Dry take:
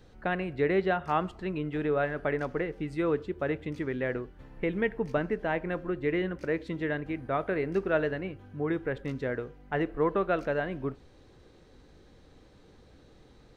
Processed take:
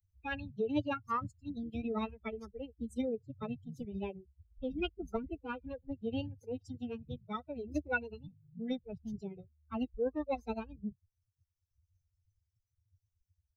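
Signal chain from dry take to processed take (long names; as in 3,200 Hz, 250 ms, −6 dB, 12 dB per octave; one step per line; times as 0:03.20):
spectral dynamics exaggerated over time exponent 3
phase-vocoder pitch shift with formants kept +7.5 semitones
multiband upward and downward compressor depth 40%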